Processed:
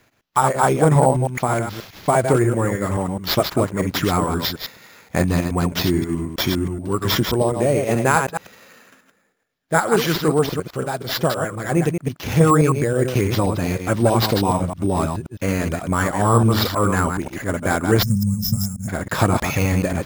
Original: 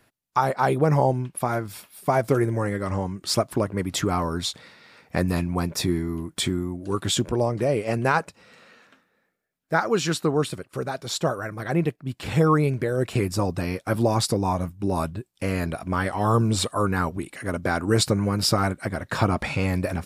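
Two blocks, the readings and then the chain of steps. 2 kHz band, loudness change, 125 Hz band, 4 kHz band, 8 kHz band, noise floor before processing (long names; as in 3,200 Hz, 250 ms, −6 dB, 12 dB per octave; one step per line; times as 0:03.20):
+5.0 dB, +5.0 dB, +5.0 dB, +3.5 dB, +3.5 dB, −70 dBFS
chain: delay that plays each chunk backwards 106 ms, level −5.5 dB
decimation without filtering 5×
gain on a spectral selection 0:18.02–0:18.88, 240–5,000 Hz −29 dB
level +4 dB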